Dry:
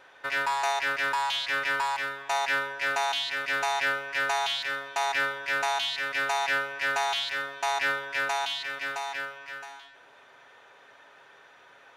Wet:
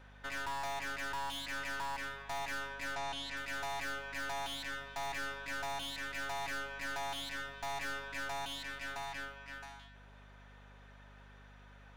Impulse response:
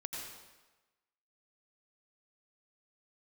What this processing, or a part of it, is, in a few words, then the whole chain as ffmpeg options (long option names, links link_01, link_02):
valve amplifier with mains hum: -filter_complex "[0:a]aeval=exprs='(tanh(39.8*val(0)+0.6)-tanh(0.6))/39.8':channel_layout=same,aeval=exprs='val(0)+0.00251*(sin(2*PI*50*n/s)+sin(2*PI*2*50*n/s)/2+sin(2*PI*3*50*n/s)/3+sin(2*PI*4*50*n/s)/4+sin(2*PI*5*50*n/s)/5)':channel_layout=same,asettb=1/sr,asplit=3[link_01][link_02][link_03];[link_01]atrim=end=2.954[link_04];[link_02]atrim=start=2.95:end=3.37,asetpts=PTS-STARTPTS,afade=type=in:duration=0.004:curve=qsin,afade=type=out:start_time=0.416:duration=0.004:curve=qsin,lowpass=7200[link_05];[link_03]atrim=start=3.366[link_06];[link_04][link_05]acrossfade=duration=0.004:curve1=hsin:curve2=qsin[link_07];[link_07][link_06]acrossfade=duration=0.004:curve1=qsin:curve2=hsin,volume=-4.5dB"